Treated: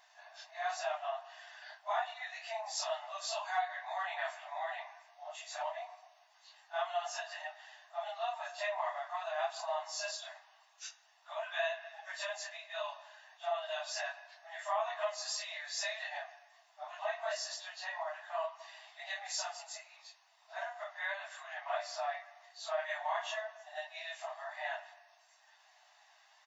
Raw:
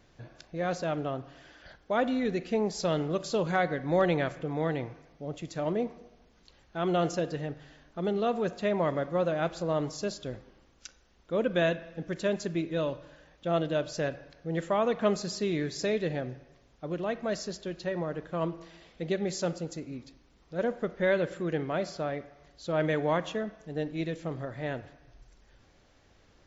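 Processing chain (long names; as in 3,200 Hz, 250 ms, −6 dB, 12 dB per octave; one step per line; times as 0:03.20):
random phases in long frames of 100 ms
comb filter 1.1 ms, depth 42%
downward compressor 5 to 1, threshold −31 dBFS, peak gain reduction 10.5 dB
linear-phase brick-wall high-pass 600 Hz
level +1.5 dB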